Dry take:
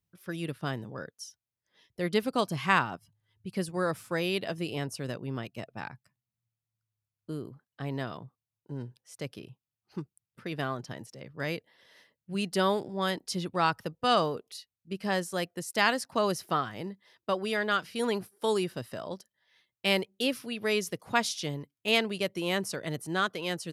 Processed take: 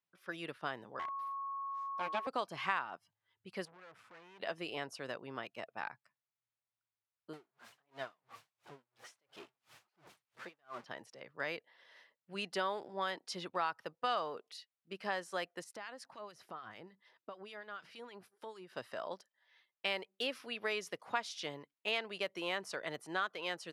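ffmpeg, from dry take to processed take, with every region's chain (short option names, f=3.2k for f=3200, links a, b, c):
-filter_complex "[0:a]asettb=1/sr,asplit=3[a][b][c];[a]atrim=end=0.994[d];[b]atrim=start=0.99:end=2.27,asetpts=PTS-STARTPTS,afade=t=in:d=0.004:c=qsin,afade=t=out:st=1.276:d=0.004:c=qsin,acrossover=split=2800[e][f];[f]acompressor=threshold=-54dB:ratio=4:attack=1:release=60[g];[e][g]amix=inputs=2:normalize=0,aeval=exprs='abs(val(0))':c=same,aeval=exprs='val(0)+0.0126*sin(2*PI*1100*n/s)':c=same[h];[c]atrim=start=2.266[i];[d][h]acrossfade=d=0.004:c1=hsin:c2=qsin[j];[j][i]acrossfade=d=0.004:c1=qsin:c2=hsin,asettb=1/sr,asplit=3[k][l][m];[k]atrim=end=3.654[n];[l]atrim=start=3.65:end=4.4,asetpts=PTS-STARTPTS,afade=t=in:d=0.004:c=qsin,afade=t=out:st=0.746:d=0.004:c=qsin,bass=f=250:g=6,treble=f=4k:g=-11,acompressor=threshold=-36dB:ratio=6:attack=3.2:release=140:knee=1:detection=peak,aeval=exprs='(tanh(282*val(0)+0.45)-tanh(0.45))/282':c=same[o];[m]atrim=start=4.396[p];[n][o]acrossfade=d=0.004:c1=hsin:c2=qsin[q];[q][p]acrossfade=d=0.004:c1=qsin:c2=hsin,asettb=1/sr,asplit=3[r][s][t];[r]atrim=end=7.334[u];[s]atrim=start=7.33:end=10.86,asetpts=PTS-STARTPTS,afade=t=in:d=0.004:c=qsin,afade=t=out:st=3.526:d=0.004:c=qsin,aeval=exprs='val(0)+0.5*0.015*sgn(val(0))':c=same,flanger=delay=1.3:depth=7.5:regen=44:speed=1.5:shape=sinusoidal,aeval=exprs='val(0)*pow(10,-39*(0.5-0.5*cos(2*PI*2.9*n/s))/20)':c=same[v];[t]atrim=start=10.856[w];[u][v]acrossfade=d=0.004:c1=hsin:c2=qsin[x];[x][w]acrossfade=d=0.004:c1=qsin:c2=hsin,asettb=1/sr,asplit=3[y][z][aa];[y]atrim=end=15.644[ab];[z]atrim=start=15.64:end=18.73,asetpts=PTS-STARTPTS,afade=t=in:d=0.004:c=qsin,afade=t=out:st=3.086:d=0.004:c=qsin,lowshelf=f=190:g=11.5,acompressor=threshold=-35dB:ratio=20:attack=3.2:release=140:knee=1:detection=peak,acrossover=split=1400[ac][ad];[ac]aeval=exprs='val(0)*(1-0.7/2+0.7/2*cos(2*PI*6.7*n/s))':c=same[ae];[ad]aeval=exprs='val(0)*(1-0.7/2-0.7/2*cos(2*PI*6.7*n/s))':c=same[af];[ae][af]amix=inputs=2:normalize=0[ag];[aa]atrim=start=18.726[ah];[ab][ag]acrossfade=d=0.004:c1=hsin:c2=qsin[ai];[ai][ah]acrossfade=d=0.004:c1=qsin:c2=hsin,highpass=830,aemphasis=mode=reproduction:type=riaa,acompressor=threshold=-35dB:ratio=3,volume=1.5dB"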